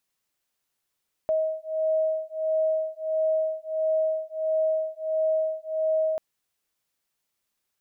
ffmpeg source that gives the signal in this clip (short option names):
-f lavfi -i "aevalsrc='0.0501*(sin(2*PI*632*t)+sin(2*PI*633.5*t))':d=4.89:s=44100"